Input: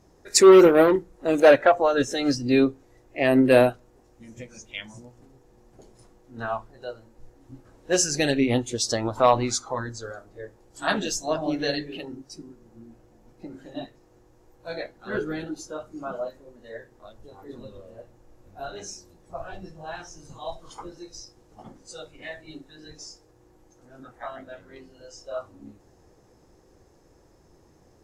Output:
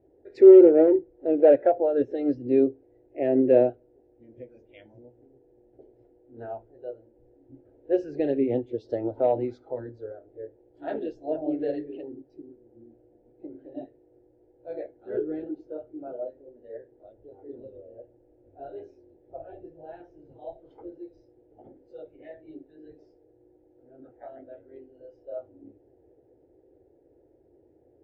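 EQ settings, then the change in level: band-pass filter 320 Hz, Q 0.76; distance through air 390 m; static phaser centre 460 Hz, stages 4; +3.0 dB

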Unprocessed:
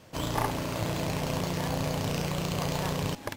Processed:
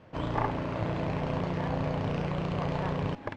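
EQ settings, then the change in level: low-pass 2.1 kHz 12 dB/octave; 0.0 dB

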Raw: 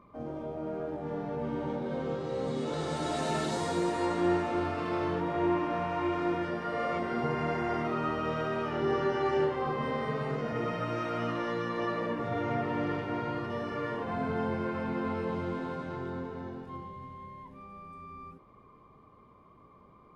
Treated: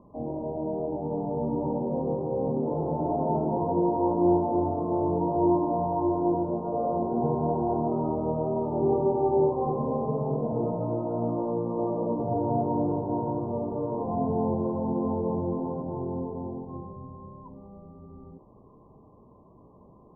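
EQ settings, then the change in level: Chebyshev low-pass 980 Hz, order 6; +6.0 dB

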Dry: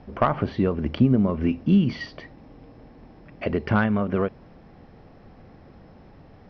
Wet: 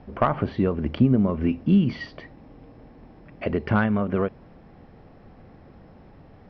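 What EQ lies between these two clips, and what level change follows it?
distance through air 93 m; 0.0 dB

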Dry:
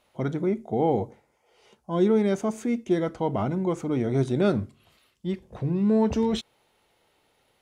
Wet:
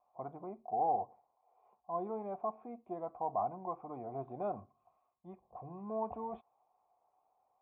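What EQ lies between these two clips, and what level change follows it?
cascade formant filter a; +3.5 dB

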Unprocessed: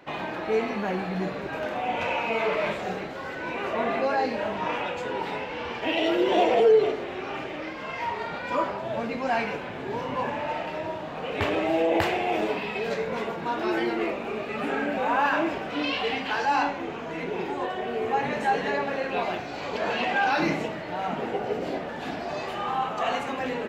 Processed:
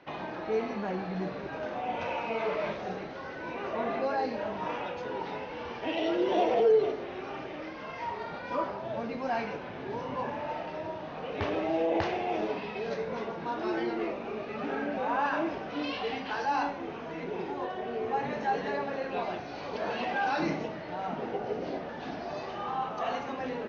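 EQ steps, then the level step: dynamic bell 2.5 kHz, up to -5 dB, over -42 dBFS, Q 0.97; steep low-pass 6.3 kHz 96 dB/octave; -4.5 dB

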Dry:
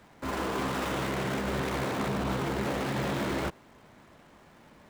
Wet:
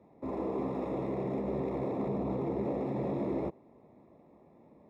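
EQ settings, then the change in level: boxcar filter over 29 samples; high-pass 120 Hz 6 dB/octave; peaking EQ 400 Hz +5 dB 1.8 oct; -3.0 dB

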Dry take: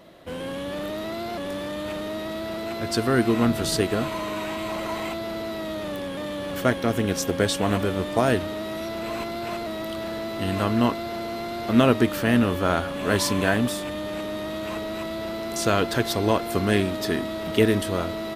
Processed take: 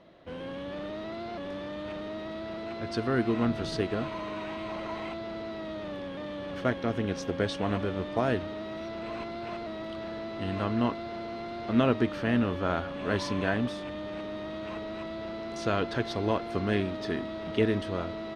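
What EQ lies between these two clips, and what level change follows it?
distance through air 130 m; band-stop 7.4 kHz, Q 7.9; -6.0 dB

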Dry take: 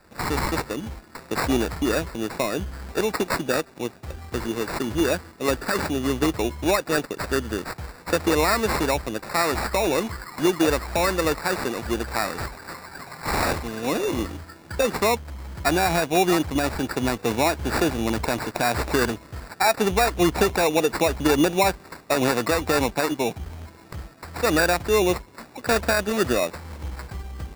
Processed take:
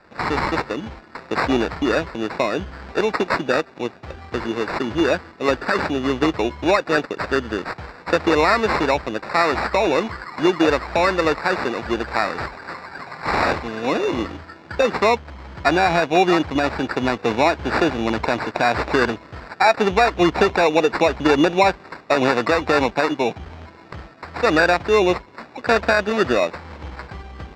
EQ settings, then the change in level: distance through air 180 m; bass shelf 68 Hz -8.5 dB; bass shelf 390 Hz -5.5 dB; +7.0 dB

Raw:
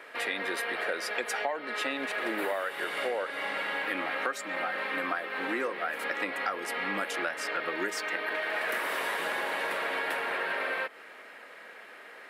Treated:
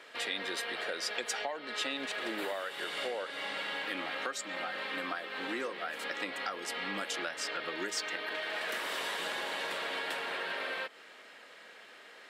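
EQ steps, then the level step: bass shelf 140 Hz +8.5 dB; high-order bell 4.9 kHz +9 dB; -6.0 dB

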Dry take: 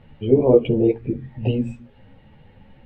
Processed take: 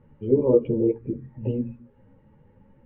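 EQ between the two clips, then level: Butterworth band-stop 710 Hz, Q 3.1; low-pass 1.1 kHz 12 dB/octave; bass shelf 100 Hz -6.5 dB; -3.5 dB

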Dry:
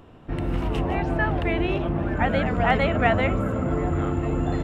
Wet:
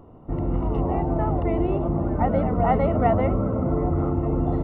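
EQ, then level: Savitzky-Golay filter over 65 samples; +1.5 dB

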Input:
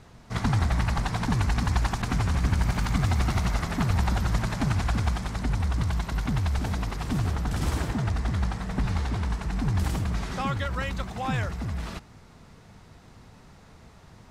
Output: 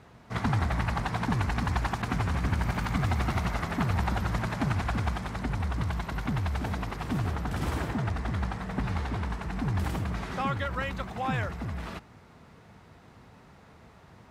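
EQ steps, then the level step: high-pass 58 Hz; tone controls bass -3 dB, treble -13 dB; treble shelf 9 kHz +12 dB; 0.0 dB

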